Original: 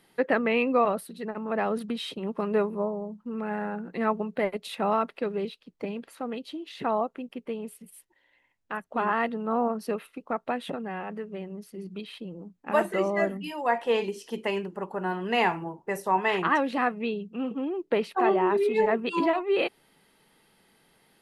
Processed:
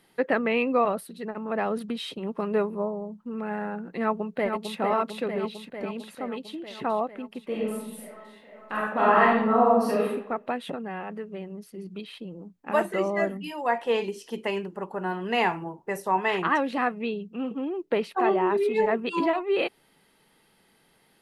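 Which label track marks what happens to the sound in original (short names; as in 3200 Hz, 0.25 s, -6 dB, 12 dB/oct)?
4.000000	4.790000	echo throw 0.45 s, feedback 70%, level -5 dB
7.460000	10.080000	reverb throw, RT60 0.83 s, DRR -6 dB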